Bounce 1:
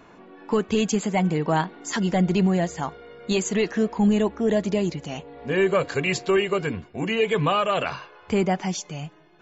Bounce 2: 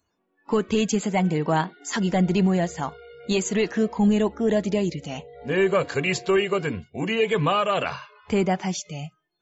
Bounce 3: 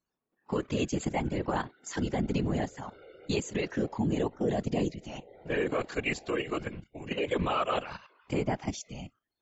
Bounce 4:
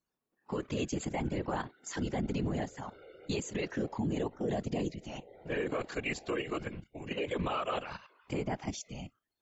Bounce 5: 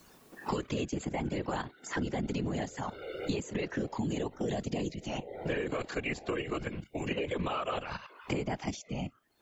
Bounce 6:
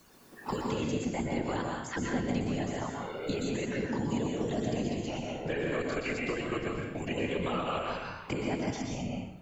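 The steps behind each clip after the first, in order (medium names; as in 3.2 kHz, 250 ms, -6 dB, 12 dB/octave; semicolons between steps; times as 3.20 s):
spectral noise reduction 27 dB
level held to a coarse grid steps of 12 dB; whisper effect; trim -4.5 dB
peak limiter -23 dBFS, peak gain reduction 7 dB; trim -1.5 dB
three bands compressed up and down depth 100%
plate-style reverb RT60 0.82 s, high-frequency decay 0.8×, pre-delay 110 ms, DRR -0.5 dB; trim -1.5 dB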